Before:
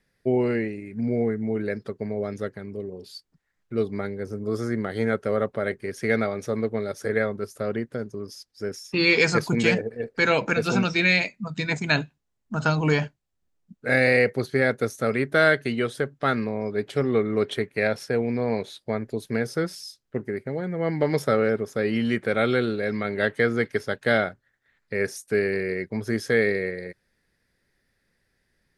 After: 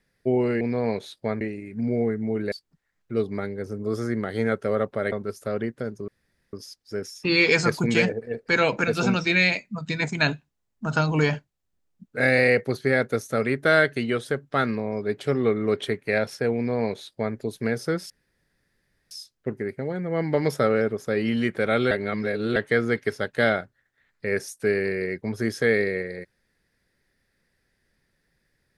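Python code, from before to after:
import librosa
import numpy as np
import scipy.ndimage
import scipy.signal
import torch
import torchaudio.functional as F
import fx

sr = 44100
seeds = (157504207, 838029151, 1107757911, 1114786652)

y = fx.edit(x, sr, fx.cut(start_s=1.72, length_s=1.41),
    fx.cut(start_s=5.73, length_s=1.53),
    fx.insert_room_tone(at_s=8.22, length_s=0.45),
    fx.duplicate(start_s=18.25, length_s=0.8, to_s=0.61),
    fx.insert_room_tone(at_s=19.79, length_s=1.01),
    fx.reverse_span(start_s=22.59, length_s=0.65), tone=tone)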